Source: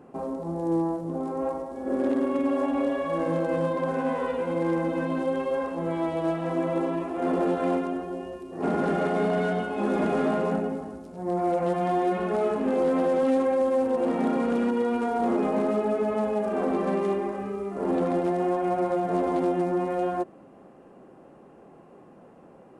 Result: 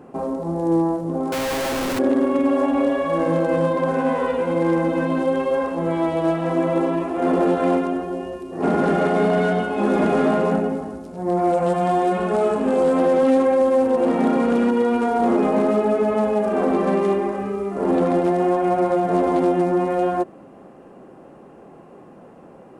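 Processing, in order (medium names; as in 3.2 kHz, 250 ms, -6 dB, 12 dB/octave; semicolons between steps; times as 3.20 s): 1.32–1.99 s: one-bit comparator; 11.51–13.00 s: graphic EQ with 31 bands 315 Hz -6 dB, 2 kHz -4 dB, 8 kHz +6 dB; trim +6.5 dB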